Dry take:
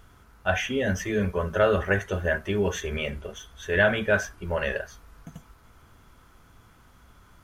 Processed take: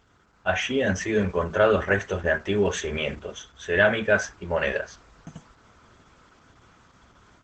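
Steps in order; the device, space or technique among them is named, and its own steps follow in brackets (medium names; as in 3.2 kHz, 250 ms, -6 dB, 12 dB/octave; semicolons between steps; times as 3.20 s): video call (high-pass 130 Hz 6 dB/octave; level rider gain up to 6.5 dB; trim -2.5 dB; Opus 12 kbps 48 kHz)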